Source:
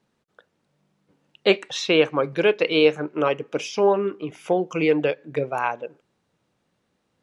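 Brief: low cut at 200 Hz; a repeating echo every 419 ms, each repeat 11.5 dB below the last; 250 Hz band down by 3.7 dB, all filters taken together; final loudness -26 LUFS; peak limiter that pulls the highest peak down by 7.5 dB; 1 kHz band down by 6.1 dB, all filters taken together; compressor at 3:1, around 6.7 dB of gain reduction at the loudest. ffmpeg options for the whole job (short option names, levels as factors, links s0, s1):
-af "highpass=200,equalizer=f=250:t=o:g=-3.5,equalizer=f=1000:t=o:g=-8,acompressor=threshold=0.0708:ratio=3,alimiter=limit=0.1:level=0:latency=1,aecho=1:1:419|838|1257:0.266|0.0718|0.0194,volume=1.78"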